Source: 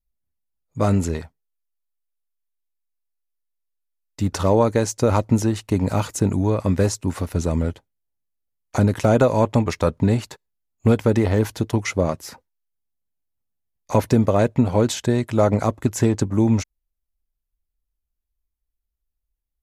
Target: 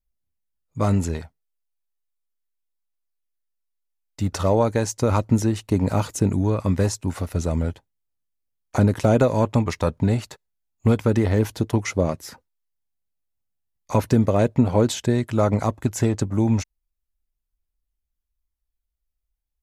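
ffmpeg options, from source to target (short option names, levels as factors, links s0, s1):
-af "aphaser=in_gain=1:out_gain=1:delay=1.6:decay=0.2:speed=0.34:type=triangular,volume=0.794"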